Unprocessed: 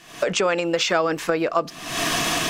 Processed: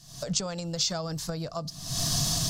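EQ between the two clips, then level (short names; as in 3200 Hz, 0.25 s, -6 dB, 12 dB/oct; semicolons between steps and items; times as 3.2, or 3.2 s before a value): EQ curve 140 Hz 0 dB, 360 Hz -27 dB, 660 Hz -19 dB, 2500 Hz -30 dB, 4500 Hz -5 dB, 9000 Hz -9 dB; +7.0 dB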